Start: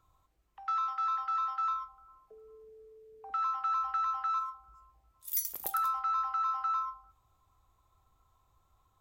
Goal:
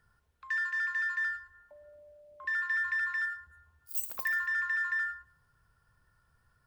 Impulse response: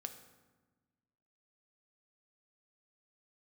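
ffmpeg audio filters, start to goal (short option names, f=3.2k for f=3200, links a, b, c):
-filter_complex "[0:a]asetrate=59535,aresample=44100,asplit=2[a][b];[1:a]atrim=start_sample=2205,atrim=end_sample=6615,adelay=114[c];[b][c]afir=irnorm=-1:irlink=0,volume=-12.5dB[d];[a][d]amix=inputs=2:normalize=0"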